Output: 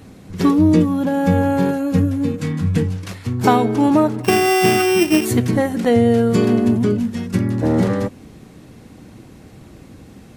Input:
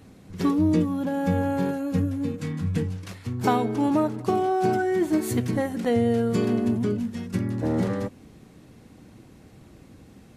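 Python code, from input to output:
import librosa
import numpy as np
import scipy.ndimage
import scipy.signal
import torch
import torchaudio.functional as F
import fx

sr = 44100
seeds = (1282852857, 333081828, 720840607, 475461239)

y = fx.sample_sort(x, sr, block=16, at=(4.23, 5.24), fade=0.02)
y = F.gain(torch.from_numpy(y), 8.0).numpy()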